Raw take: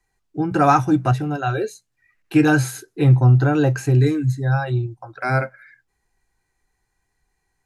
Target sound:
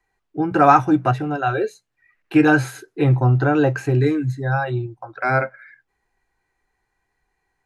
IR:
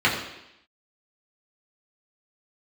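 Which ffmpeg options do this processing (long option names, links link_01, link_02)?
-af "bass=frequency=250:gain=-7,treble=frequency=4000:gain=-11,volume=3dB"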